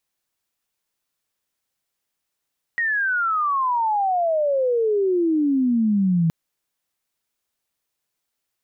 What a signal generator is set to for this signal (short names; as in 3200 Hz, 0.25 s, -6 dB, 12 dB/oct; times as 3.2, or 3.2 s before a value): chirp logarithmic 1900 Hz -> 160 Hz -19 dBFS -> -15.5 dBFS 3.52 s